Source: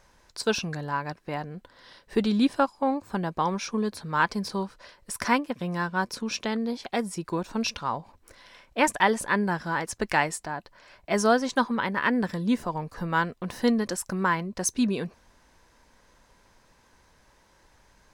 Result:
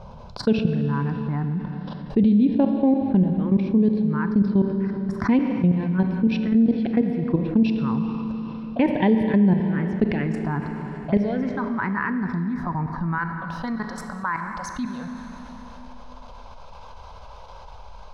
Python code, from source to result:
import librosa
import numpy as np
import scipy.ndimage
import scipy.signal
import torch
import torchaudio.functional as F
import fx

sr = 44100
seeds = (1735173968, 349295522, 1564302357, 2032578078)

y = fx.peak_eq(x, sr, hz=180.0, db=fx.steps((0.0, 14.5), (11.17, 4.0), (13.18, -9.5)), octaves=2.5)
y = fx.level_steps(y, sr, step_db=16)
y = fx.env_phaser(y, sr, low_hz=310.0, high_hz=1300.0, full_db=-21.0)
y = fx.air_absorb(y, sr, metres=300.0)
y = fx.rev_schroeder(y, sr, rt60_s=2.5, comb_ms=28, drr_db=9.0)
y = fx.env_flatten(y, sr, amount_pct=50)